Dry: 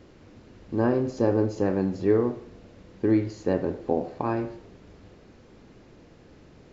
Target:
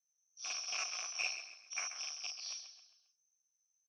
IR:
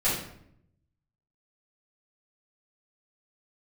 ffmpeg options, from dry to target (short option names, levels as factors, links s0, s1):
-filter_complex "[0:a]afftfilt=real='re':imag='-im':win_size=8192:overlap=0.75,anlmdn=0.398,acrossover=split=2000[s0][s1];[s1]alimiter=level_in=18.8:limit=0.0631:level=0:latency=1:release=38,volume=0.0531[s2];[s0][s2]amix=inputs=2:normalize=0,lowpass=f=3100:t=q:w=0.5098,lowpass=f=3100:t=q:w=0.6013,lowpass=f=3100:t=q:w=0.9,lowpass=f=3100:t=q:w=2.563,afreqshift=-3600,flanger=delay=18.5:depth=5.6:speed=0.97,aresample=11025,aeval=exprs='0.0531*(abs(mod(val(0)/0.0531+3,4)-2)-1)':c=same,aresample=44100,asplit=5[s3][s4][s5][s6][s7];[s4]adelay=232,afreqshift=-40,volume=0.316[s8];[s5]adelay=464,afreqshift=-80,volume=0.126[s9];[s6]adelay=696,afreqshift=-120,volume=0.0507[s10];[s7]adelay=928,afreqshift=-160,volume=0.0202[s11];[s3][s8][s9][s10][s11]amix=inputs=5:normalize=0,asetrate=76440,aresample=44100,asplit=3[s12][s13][s14];[s12]bandpass=f=730:t=q:w=8,volume=1[s15];[s13]bandpass=f=1090:t=q:w=8,volume=0.501[s16];[s14]bandpass=f=2440:t=q:w=8,volume=0.355[s17];[s15][s16][s17]amix=inputs=3:normalize=0,volume=5.62"